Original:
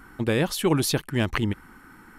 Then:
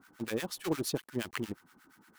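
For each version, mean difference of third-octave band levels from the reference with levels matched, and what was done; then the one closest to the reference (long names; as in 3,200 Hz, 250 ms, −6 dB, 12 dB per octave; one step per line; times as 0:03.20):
5.5 dB: high-pass filter 150 Hz 12 dB per octave
dynamic equaliser 370 Hz, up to +3 dB, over −32 dBFS, Q 1
log-companded quantiser 4 bits
two-band tremolo in antiphase 8.5 Hz, depth 100%, crossover 1,000 Hz
level −8.5 dB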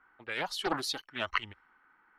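8.0 dB: three-way crossover with the lows and the highs turned down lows −20 dB, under 520 Hz, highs −15 dB, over 4,400 Hz
low-pass that shuts in the quiet parts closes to 2,200 Hz, open at −27.5 dBFS
noise reduction from a noise print of the clip's start 13 dB
highs frequency-modulated by the lows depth 0.39 ms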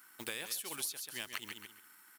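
12.5 dB: mu-law and A-law mismatch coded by A
first difference
on a send: repeating echo 135 ms, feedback 23%, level −10 dB
on the sum: downward compressor 10 to 1, threshold −44 dBFS, peak gain reduction 19.5 dB
level +7.5 dB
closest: first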